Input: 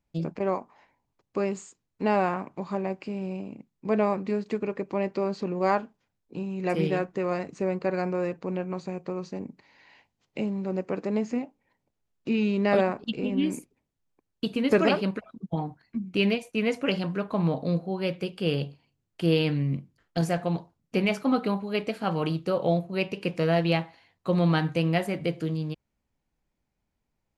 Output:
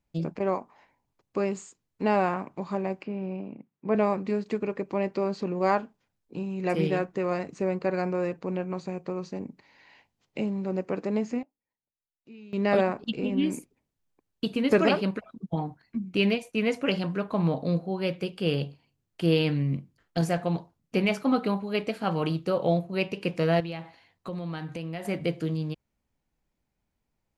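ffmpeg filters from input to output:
-filter_complex "[0:a]asettb=1/sr,asplit=3[s0][s1][s2];[s0]atrim=end=3.034[s3];[s1]atrim=start=3.03:end=3.95,asetpts=PTS-STARTPTS,afade=t=in:d=0.004:c=qsin,afade=t=out:st=0.916:d=0.004:c=qsin,highpass=120,lowpass=2400[s4];[s2]atrim=start=3.946[s5];[s3][s4]acrossfade=d=0.004:c1=hsin:c2=qsin[s6];[s6][s5]acrossfade=d=0.004:c1=qsin:c2=hsin,asettb=1/sr,asplit=3[s7][s8][s9];[s7]atrim=end=23.604[s10];[s8]atrim=start=23.6:end=25.05,asetpts=PTS-STARTPTS,afade=t=in:d=0.004:c=qsin,afade=t=out:st=1.446:d=0.004:c=qsin,acompressor=threshold=0.0224:ratio=4:attack=3.2:release=140:knee=1:detection=peak[s11];[s9]atrim=start=25.046[s12];[s10][s11]acrossfade=d=0.004:c1=hsin:c2=qsin[s13];[s13][s12]acrossfade=d=0.004:c1=qsin:c2=hsin,asplit=3[s14][s15][s16];[s14]atrim=end=11.43,asetpts=PTS-STARTPTS,afade=t=out:st=10.96:d=0.47:c=log:silence=0.0794328[s17];[s15]atrim=start=11.43:end=12.53,asetpts=PTS-STARTPTS,volume=0.0794[s18];[s16]atrim=start=12.53,asetpts=PTS-STARTPTS,afade=t=in:d=0.47:c=log:silence=0.0794328[s19];[s17][s18][s19]concat=n=3:v=0:a=1"

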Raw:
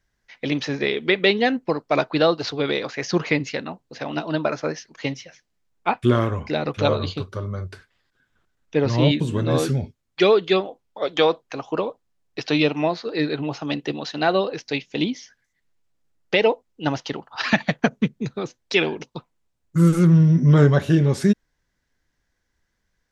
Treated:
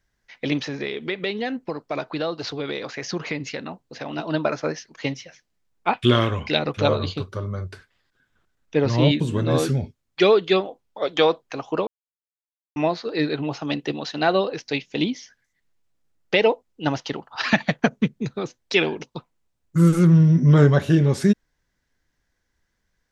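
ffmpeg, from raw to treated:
-filter_complex "[0:a]asettb=1/sr,asplit=3[s0][s1][s2];[s0]atrim=end=0.604[s3];[s1]atrim=start=0.6:end=4.19,asetpts=PTS-STARTPTS,afade=t=in:d=0.004:c=qsin,afade=t=out:st=3.586:d=0.004:c=qsin,acompressor=threshold=0.0398:ratio=2:attack=3.2:release=140:knee=1:detection=peak[s4];[s2]atrim=start=4.186[s5];[s3][s4]acrossfade=d=0.004:c1=hsin:c2=qsin[s6];[s6][s5]acrossfade=d=0.004:c1=qsin:c2=hsin,asettb=1/sr,asplit=3[s7][s8][s9];[s7]atrim=end=5.934[s10];[s8]atrim=start=5.93:end=6.59,asetpts=PTS-STARTPTS,afade=t=in:d=0.004:c=qsin,afade=t=out:st=0.656:d=0.004:c=qsin,equalizer=f=3200:t=o:w=1.1:g=12.5[s11];[s9]atrim=start=6.586[s12];[s10][s11]acrossfade=d=0.004:c1=hsin:c2=qsin[s13];[s13][s12]acrossfade=d=0.004:c1=qsin:c2=hsin,asplit=3[s14][s15][s16];[s14]atrim=end=11.87,asetpts=PTS-STARTPTS,afade=t=out:st=11.866:d=0.004:c=hsin[s17];[s15]atrim=start=11.87:end=12.76,asetpts=PTS-STARTPTS,volume=0[s18];[s16]atrim=start=12.76,asetpts=PTS-STARTPTS,afade=t=in:d=0.004:c=hsin[s19];[s17][s18][s19]concat=n=3:v=0:a=1"

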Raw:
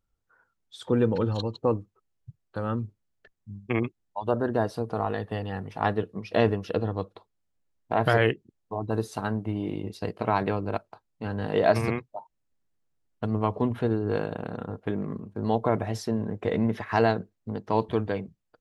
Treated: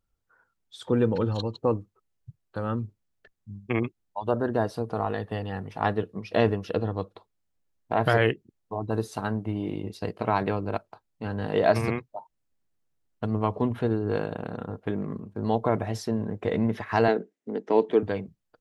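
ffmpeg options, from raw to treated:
-filter_complex "[0:a]asettb=1/sr,asplit=3[s0][s1][s2];[s0]atrim=end=17.084[s3];[s1]atrim=start=17.08:end=18.03,asetpts=PTS-STARTPTS,afade=t=in:d=0.004:c=qsin,afade=t=out:st=0.946:d=0.004:c=qsin,highpass=f=200:w=0.5412,highpass=f=200:w=1.3066,equalizer=f=290:t=q:w=4:g=5,equalizer=f=420:t=q:w=4:g=8,equalizer=f=1100:t=q:w=4:g=-6,equalizer=f=2000:t=q:w=4:g=5,equalizer=f=4400:t=q:w=4:g=-6,lowpass=f=8400:w=0.5412,lowpass=f=8400:w=1.3066[s4];[s2]atrim=start=18.026[s5];[s3][s4]acrossfade=d=0.004:c1=hsin:c2=qsin[s6];[s6][s5]acrossfade=d=0.004:c1=qsin:c2=hsin"

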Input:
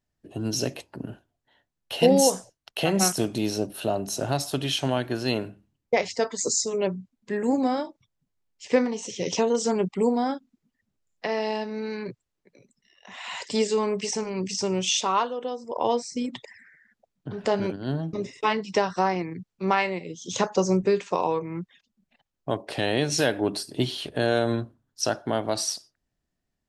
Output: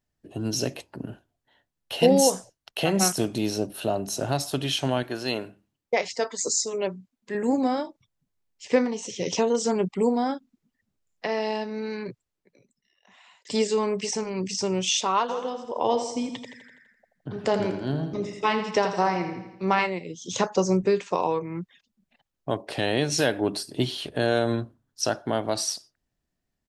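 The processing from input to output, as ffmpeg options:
-filter_complex "[0:a]asettb=1/sr,asplit=3[s0][s1][s2];[s0]atrim=end=5.034[s3];[s1]atrim=start=5.03:end=7.35,asetpts=PTS-STARTPTS,afade=t=in:d=0.004:c=qsin,afade=t=out:st=2.316:d=0.004:c=qsin,lowshelf=f=220:g=-10.5[s4];[s2]atrim=start=7.346[s5];[s3][s4]acrossfade=d=0.004:c1=hsin:c2=qsin[s6];[s6][s5]acrossfade=d=0.004:c1=qsin:c2=hsin,asplit=3[s7][s8][s9];[s7]afade=t=out:st=15.28:d=0.02[s10];[s8]aecho=1:1:83|166|249|332|415|498:0.355|0.192|0.103|0.0559|0.0302|0.0163,afade=t=in:st=15.28:d=0.02,afade=t=out:st=19.85:d=0.02[s11];[s9]afade=t=in:st=19.85:d=0.02[s12];[s10][s11][s12]amix=inputs=3:normalize=0,asplit=2[s13][s14];[s13]atrim=end=13.45,asetpts=PTS-STARTPTS,afade=t=out:st=12:d=1.45[s15];[s14]atrim=start=13.45,asetpts=PTS-STARTPTS,afade=t=in:d=0.004:c=hsin[s16];[s15][s16]concat=n=2:v=0:a=1"

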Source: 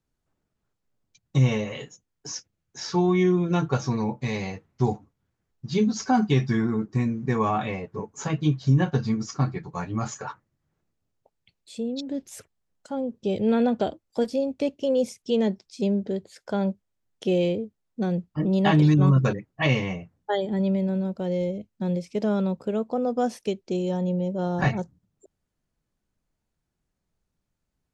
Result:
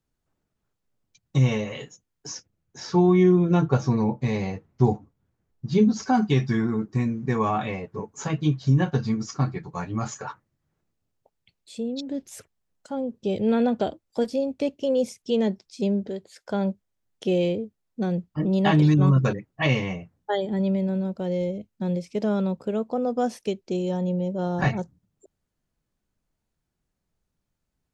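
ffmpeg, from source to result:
-filter_complex "[0:a]asettb=1/sr,asplit=3[s0][s1][s2];[s0]atrim=end=2.334[s3];[s1]atrim=start=2.33:end=6.03,asetpts=PTS-STARTPTS,afade=t=in:d=0.004:c=qsin,afade=t=out:st=3.696:d=0.004:c=qsin,tiltshelf=f=1200:g=4[s4];[s2]atrim=start=6.026[s5];[s3][s4]acrossfade=d=0.004:c1=hsin:c2=qsin[s6];[s6][s5]acrossfade=d=0.004:c1=qsin:c2=hsin,asettb=1/sr,asplit=3[s7][s8][s9];[s7]atrim=end=16.094[s10];[s8]atrim=start=16.09:end=16.5,asetpts=PTS-STARTPTS,afade=t=in:d=0.004:c=qsin,afade=t=out:st=0.406:d=0.004:c=qsin,lowshelf=f=330:g=-8[s11];[s9]atrim=start=16.496[s12];[s10][s11]acrossfade=d=0.004:c1=hsin:c2=qsin[s13];[s13][s12]acrossfade=d=0.004:c1=qsin:c2=hsin"

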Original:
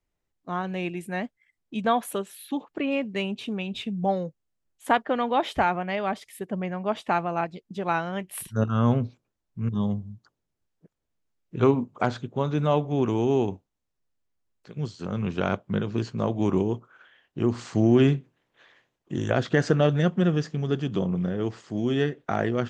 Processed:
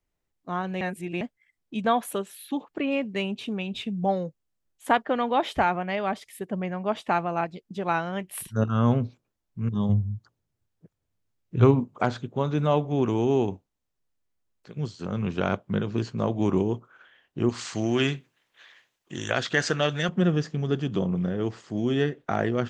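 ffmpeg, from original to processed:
-filter_complex "[0:a]asettb=1/sr,asplit=3[s0][s1][s2];[s0]atrim=end=9.894[s3];[s1]atrim=start=9.89:end=11.8,asetpts=PTS-STARTPTS,afade=t=in:d=0.004:c=qsin,afade=t=out:st=1.906:d=0.004:c=qsin,equalizer=f=100:w=1.5:g=11[s4];[s2]atrim=start=11.796[s5];[s3][s4]acrossfade=d=0.004:c1=hsin:c2=qsin[s6];[s6][s5]acrossfade=d=0.004:c1=qsin:c2=hsin,asettb=1/sr,asplit=3[s7][s8][s9];[s7]atrim=end=17.494[s10];[s8]atrim=start=17.49:end=20.09,asetpts=PTS-STARTPTS,afade=t=in:d=0.004:c=qsin,afade=t=out:st=2.596:d=0.004:c=qsin,tiltshelf=f=970:g=-8[s11];[s9]atrim=start=20.086[s12];[s10][s11]acrossfade=d=0.004:c1=hsin:c2=qsin[s13];[s13][s12]acrossfade=d=0.004:c1=qsin:c2=hsin,asplit=3[s14][s15][s16];[s14]atrim=end=0.812[s17];[s15]atrim=start=0.808:end=1.212,asetpts=PTS-STARTPTS,areverse[s18];[s16]atrim=start=1.208[s19];[s17][s18]acrossfade=d=0.004:c1=hsin:c2=hsin[s20];[s20][s19]acrossfade=d=0.004:c1=hsin:c2=hsin"

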